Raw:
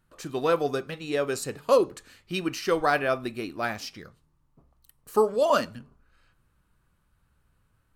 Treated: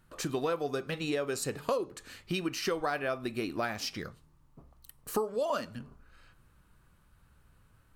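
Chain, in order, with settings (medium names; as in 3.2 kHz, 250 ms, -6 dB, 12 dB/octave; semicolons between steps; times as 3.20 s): compression 5:1, threshold -35 dBFS, peak gain reduction 17.5 dB; trim +5 dB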